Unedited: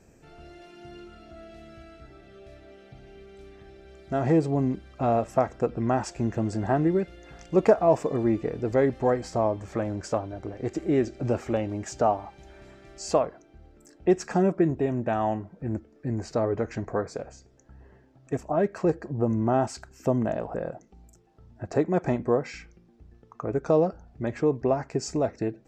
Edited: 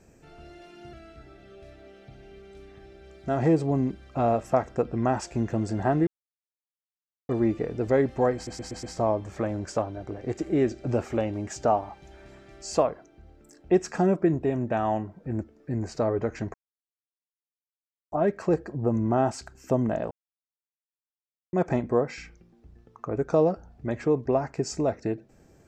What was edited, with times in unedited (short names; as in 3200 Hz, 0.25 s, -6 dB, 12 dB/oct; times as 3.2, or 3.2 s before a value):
0.93–1.77 cut
6.91–8.13 mute
9.19 stutter 0.12 s, 5 plays
16.9–18.48 mute
20.47–21.89 mute